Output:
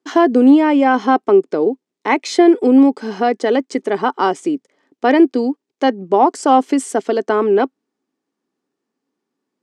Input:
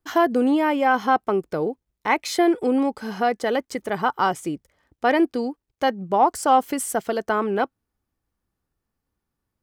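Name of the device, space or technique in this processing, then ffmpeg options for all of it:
television speaker: -af "highpass=frequency=200:width=0.5412,highpass=frequency=200:width=1.3066,equalizer=frequency=270:width_type=q:width=4:gain=8,equalizer=frequency=400:width_type=q:width=4:gain=8,equalizer=frequency=1400:width_type=q:width=4:gain=-3,lowpass=frequency=8100:width=0.5412,lowpass=frequency=8100:width=1.3066,volume=4dB"

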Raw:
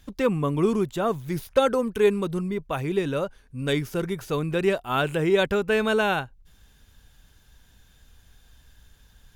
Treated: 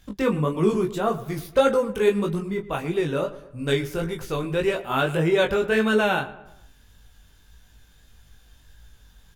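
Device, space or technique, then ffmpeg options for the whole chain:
double-tracked vocal: -filter_complex "[0:a]asplit=2[link_01][link_02];[link_02]adelay=19,volume=-8.5dB[link_03];[link_01][link_03]amix=inputs=2:normalize=0,flanger=delay=17.5:depth=5:speed=1.7,asplit=3[link_04][link_05][link_06];[link_04]afade=type=out:start_time=3.94:duration=0.02[link_07];[link_05]asubboost=boost=3.5:cutoff=79,afade=type=in:start_time=3.94:duration=0.02,afade=type=out:start_time=4.76:duration=0.02[link_08];[link_06]afade=type=in:start_time=4.76:duration=0.02[link_09];[link_07][link_08][link_09]amix=inputs=3:normalize=0,asplit=2[link_10][link_11];[link_11]adelay=114,lowpass=frequency=2400:poles=1,volume=-15.5dB,asplit=2[link_12][link_13];[link_13]adelay=114,lowpass=frequency=2400:poles=1,volume=0.49,asplit=2[link_14][link_15];[link_15]adelay=114,lowpass=frequency=2400:poles=1,volume=0.49,asplit=2[link_16][link_17];[link_17]adelay=114,lowpass=frequency=2400:poles=1,volume=0.49[link_18];[link_10][link_12][link_14][link_16][link_18]amix=inputs=5:normalize=0,volume=3.5dB"

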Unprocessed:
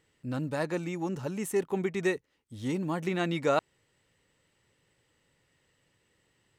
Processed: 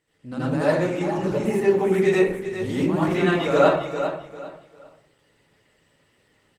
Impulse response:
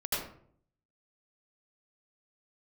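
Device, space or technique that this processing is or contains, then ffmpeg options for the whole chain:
far-field microphone of a smart speaker: -filter_complex "[0:a]aecho=1:1:399|798|1197:0.316|0.0917|0.0266,asettb=1/sr,asplit=3[link_01][link_02][link_03];[link_01]atrim=end=1.244[link_04];[link_02]atrim=start=1.24:end=2.05,asetpts=PTS-STARTPTS,afade=type=in:duration=0.004:curve=qsin,afade=type=out:start_time=0.806:duration=0.004:curve=qsin,acrossover=split=4700[link_05][link_06];[link_06]acompressor=threshold=-50dB:ratio=4:attack=1:release=60[link_07];[link_05][link_07]amix=inputs=2:normalize=0[link_08];[link_03]atrim=start=2.046[link_09];[link_04][link_08]acrossfade=duration=0.004:curve1=hsin:curve2=qsin[link_10];[link_10][link_09]acrossfade=duration=0.004:curve1=qsin:curve2=hsin[link_11];[1:a]atrim=start_sample=2205[link_12];[link_11][link_12]afir=irnorm=-1:irlink=0,highpass=frequency=110:poles=1,dynaudnorm=framelen=170:gausssize=3:maxgain=4dB" -ar 48000 -c:a libopus -b:a 20k

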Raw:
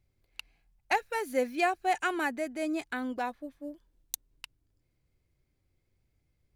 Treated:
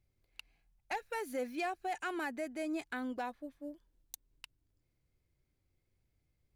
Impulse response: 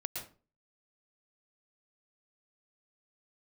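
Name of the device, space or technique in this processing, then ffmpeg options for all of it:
soft clipper into limiter: -af "asoftclip=type=tanh:threshold=-19.5dB,alimiter=level_in=1.5dB:limit=-24dB:level=0:latency=1:release=123,volume=-1.5dB,volume=-4dB"

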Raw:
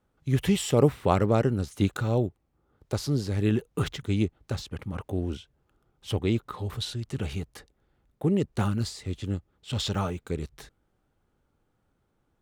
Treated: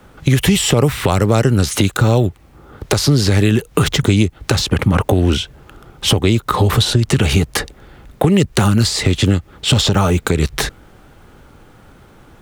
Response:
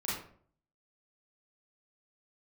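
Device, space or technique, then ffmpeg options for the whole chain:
mastering chain: -filter_complex "[0:a]equalizer=frequency=2200:width_type=o:width=2.1:gain=3.5,acrossover=split=140|1100|4900[link_01][link_02][link_03][link_04];[link_01]acompressor=threshold=-39dB:ratio=4[link_05];[link_02]acompressor=threshold=-37dB:ratio=4[link_06];[link_03]acompressor=threshold=-47dB:ratio=4[link_07];[link_04]acompressor=threshold=-46dB:ratio=4[link_08];[link_05][link_06][link_07][link_08]amix=inputs=4:normalize=0,acompressor=threshold=-39dB:ratio=2.5,alimiter=level_in=29dB:limit=-1dB:release=50:level=0:latency=1,volume=-1dB"

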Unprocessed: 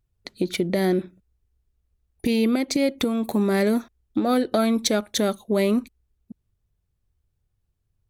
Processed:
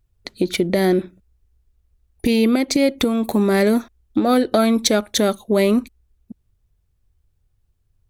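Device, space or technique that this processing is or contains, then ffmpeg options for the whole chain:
low shelf boost with a cut just above: -af "lowshelf=frequency=62:gain=6,equalizer=frequency=160:width_type=o:width=0.77:gain=-3,volume=5dB"

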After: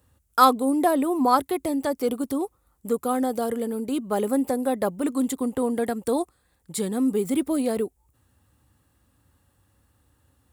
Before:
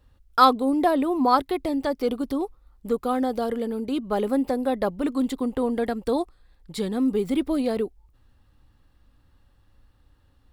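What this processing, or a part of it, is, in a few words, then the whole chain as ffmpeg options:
budget condenser microphone: -af "highpass=frequency=68:width=0.5412,highpass=frequency=68:width=1.3066,highshelf=frequency=6000:width_type=q:width=1.5:gain=9.5"

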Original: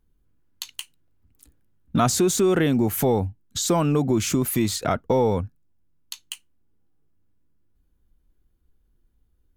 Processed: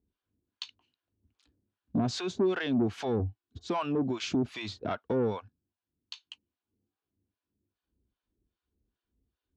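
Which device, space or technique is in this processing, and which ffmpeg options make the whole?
guitar amplifier with harmonic tremolo: -filter_complex "[0:a]asettb=1/sr,asplit=3[link_01][link_02][link_03];[link_01]atrim=end=3.194[link_04];[link_02]atrim=start=3.19:end=3.67,asetpts=PTS-STARTPTS,afade=type=in:duration=0.004:curve=qsin,afade=type=out:start_time=0.476:duration=0.004:curve=qsin,aecho=1:1:2.7:0.65,atrim=end_sample=21168[link_05];[link_03]atrim=start=3.666[link_06];[link_04][link_05]acrossfade=duration=0.004:curve1=hsin:curve2=qsin[link_07];[link_07][link_06]acrossfade=duration=0.004:curve1=qsin:curve2=hsin,acrossover=split=630[link_08][link_09];[link_08]aeval=exprs='val(0)*(1-1/2+1/2*cos(2*PI*2.5*n/s))':channel_layout=same[link_10];[link_09]aeval=exprs='val(0)*(1-1/2-1/2*cos(2*PI*2.5*n/s))':channel_layout=same[link_11];[link_10][link_11]amix=inputs=2:normalize=0,asoftclip=type=tanh:threshold=-19.5dB,highpass=90,equalizer=frequency=150:width_type=q:width=4:gain=-10,equalizer=frequency=520:width_type=q:width=4:gain=-4,equalizer=frequency=820:width_type=q:width=4:gain=-3,equalizer=frequency=1300:width_type=q:width=4:gain=-4,equalizer=frequency=2000:width_type=q:width=4:gain=-6,lowpass=frequency=4600:width=0.5412,lowpass=frequency=4600:width=1.3066"

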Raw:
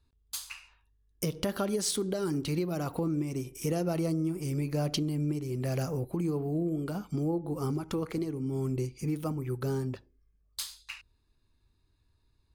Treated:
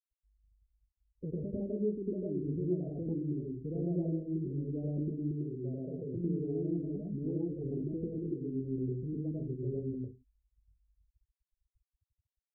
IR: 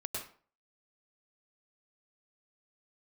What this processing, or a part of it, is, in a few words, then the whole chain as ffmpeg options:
next room: -filter_complex "[0:a]lowpass=frequency=460:width=0.5412,lowpass=frequency=460:width=1.3066[link_01];[1:a]atrim=start_sample=2205[link_02];[link_01][link_02]afir=irnorm=-1:irlink=0,asettb=1/sr,asplit=3[link_03][link_04][link_05];[link_03]atrim=end=5.314[link_06];[link_04]atrim=start=5.31:end=6.16,asetpts=PTS-STARTPTS,afade=type=in:duration=0.004:curve=qsin,afade=type=out:start_time=0.846:duration=0.004:curve=qsin,highpass=frequency=160:poles=1[link_07];[link_05]atrim=start=6.156[link_08];[link_06][link_07]acrossfade=duration=0.004:curve1=hsin:curve2=qsin[link_09];[link_09][link_08]acrossfade=duration=0.004:curve1=qsin:curve2=hsin,afftfilt=real='re*gte(hypot(re,im),0.00708)':imag='im*gte(hypot(re,im),0.00708)':win_size=1024:overlap=0.75,volume=-4.5dB"

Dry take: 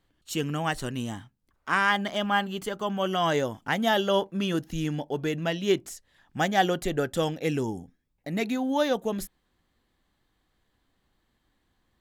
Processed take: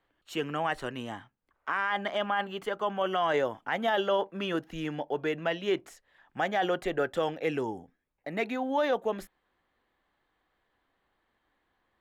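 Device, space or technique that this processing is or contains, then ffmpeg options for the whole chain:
DJ mixer with the lows and highs turned down: -filter_complex "[0:a]acrossover=split=380 2900:gain=0.224 1 0.158[link_01][link_02][link_03];[link_01][link_02][link_03]amix=inputs=3:normalize=0,alimiter=limit=-21dB:level=0:latency=1:release=15,volume=2.5dB"

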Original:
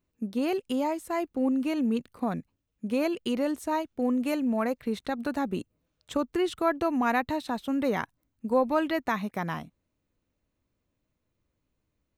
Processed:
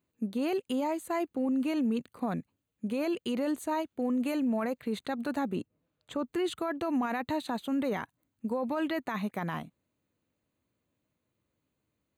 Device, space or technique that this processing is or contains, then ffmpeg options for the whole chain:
PA system with an anti-feedback notch: -filter_complex "[0:a]asettb=1/sr,asplit=3[link_01][link_02][link_03];[link_01]atrim=end=5.554[link_04];[link_02]atrim=start=5.55:end=6.25,asetpts=PTS-STARTPTS,afade=type=in:duration=0.004:curve=qsin,afade=type=out:start_time=0.696:duration=0.004:curve=qsin,highshelf=frequency=3400:gain=-9[link_05];[link_03]atrim=start=6.246[link_06];[link_04][link_05]acrossfade=duration=0.004:curve1=hsin:curve2=qsin[link_07];[link_07][link_06]acrossfade=duration=0.004:curve1=qsin:curve2=hsin,highpass=100,asuperstop=centerf=5400:order=4:qfactor=4.9,alimiter=limit=-23.5dB:level=0:latency=1:release=12"

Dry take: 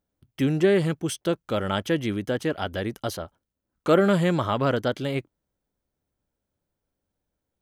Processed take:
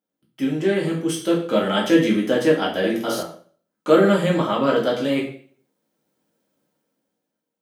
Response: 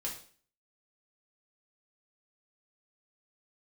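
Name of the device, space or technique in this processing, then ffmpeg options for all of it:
far laptop microphone: -filter_complex "[0:a]lowshelf=frequency=110:gain=10[link_01];[1:a]atrim=start_sample=2205[link_02];[link_01][link_02]afir=irnorm=-1:irlink=0,highpass=frequency=190:width=0.5412,highpass=frequency=190:width=1.3066,dynaudnorm=framelen=200:gausssize=11:maxgain=15dB,asettb=1/sr,asplit=3[link_03][link_04][link_05];[link_03]atrim=end=2.794[link_06];[link_04]atrim=start=2.79:end=3.23,asetpts=PTS-STARTPTS,afade=type=in:duration=0.004:curve=qsin,afade=type=out:start_time=0.436:duration=0.004:curve=qsin,asplit=2[link_07][link_08];[link_08]adelay=47,volume=-3dB[link_09];[link_07][link_09]amix=inputs=2:normalize=0,atrim=end_sample=19404[link_10];[link_05]atrim=start=3.226[link_11];[link_06][link_10]acrossfade=duration=0.004:curve1=hsin:curve2=qsin[link_12];[link_12][link_11]acrossfade=duration=0.004:curve1=qsin:curve2=hsin,volume=-2dB"

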